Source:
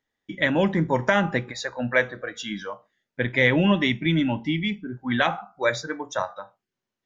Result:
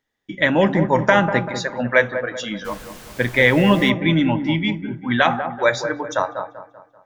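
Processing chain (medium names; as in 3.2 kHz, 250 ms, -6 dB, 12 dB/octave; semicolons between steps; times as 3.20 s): feedback echo behind a low-pass 194 ms, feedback 44%, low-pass 1.3 kHz, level -8 dB; 2.64–3.89 s: added noise pink -43 dBFS; dynamic bell 900 Hz, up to +3 dB, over -34 dBFS, Q 0.72; trim +3.5 dB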